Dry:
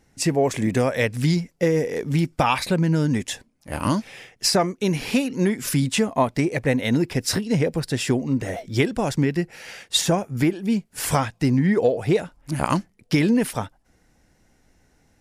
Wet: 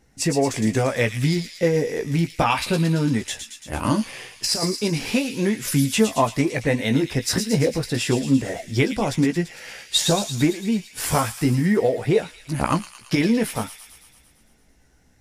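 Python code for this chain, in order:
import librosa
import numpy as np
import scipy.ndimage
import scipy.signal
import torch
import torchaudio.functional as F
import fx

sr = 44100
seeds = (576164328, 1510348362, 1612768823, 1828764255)

y = fx.over_compress(x, sr, threshold_db=-22.0, ratio=-0.5, at=(3.99, 4.76))
y = fx.echo_wet_highpass(y, sr, ms=113, feedback_pct=66, hz=3100.0, wet_db=-5)
y = fx.chorus_voices(y, sr, voices=6, hz=0.52, base_ms=16, depth_ms=2.5, mix_pct=35)
y = y * librosa.db_to_amplitude(3.0)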